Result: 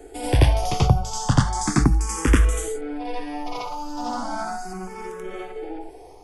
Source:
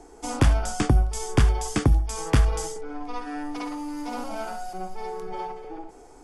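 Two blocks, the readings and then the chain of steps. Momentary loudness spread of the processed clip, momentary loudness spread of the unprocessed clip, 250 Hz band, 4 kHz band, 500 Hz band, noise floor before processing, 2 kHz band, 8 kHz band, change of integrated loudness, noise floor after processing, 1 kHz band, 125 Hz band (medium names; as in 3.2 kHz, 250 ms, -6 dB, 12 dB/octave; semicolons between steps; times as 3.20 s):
15 LU, 13 LU, +3.0 dB, +4.5 dB, +3.0 dB, -49 dBFS, +3.5 dB, +4.0 dB, +3.5 dB, -43 dBFS, +4.5 dB, +3.0 dB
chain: on a send: reverse echo 85 ms -3.5 dB; on the sum: barber-pole phaser +0.36 Hz; trim +5.5 dB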